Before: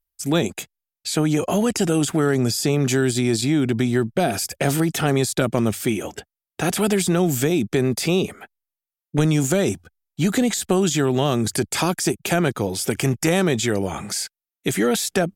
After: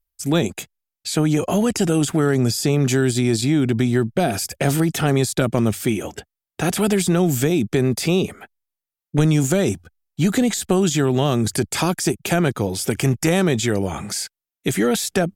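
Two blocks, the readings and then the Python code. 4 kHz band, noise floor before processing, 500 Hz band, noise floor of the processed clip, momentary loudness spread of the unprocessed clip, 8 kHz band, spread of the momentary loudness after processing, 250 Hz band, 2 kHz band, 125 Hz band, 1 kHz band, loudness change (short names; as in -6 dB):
0.0 dB, under -85 dBFS, +0.5 dB, under -85 dBFS, 8 LU, 0.0 dB, 7 LU, +1.5 dB, 0.0 dB, +3.0 dB, 0.0 dB, +1.0 dB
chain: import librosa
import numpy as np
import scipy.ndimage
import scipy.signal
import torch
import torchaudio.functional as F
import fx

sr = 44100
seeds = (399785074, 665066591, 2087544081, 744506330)

y = fx.low_shelf(x, sr, hz=160.0, db=5.0)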